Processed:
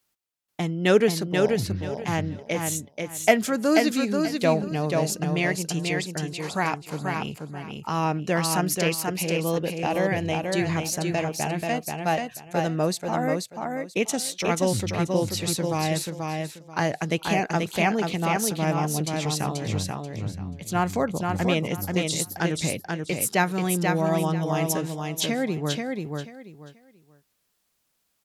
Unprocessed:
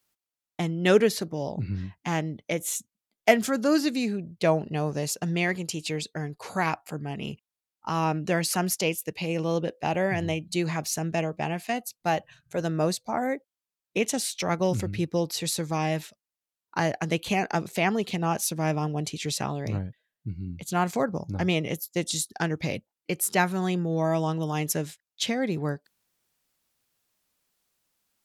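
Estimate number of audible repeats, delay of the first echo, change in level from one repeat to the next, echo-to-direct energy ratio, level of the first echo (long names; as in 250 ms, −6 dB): 3, 485 ms, −13.0 dB, −4.0 dB, −4.0 dB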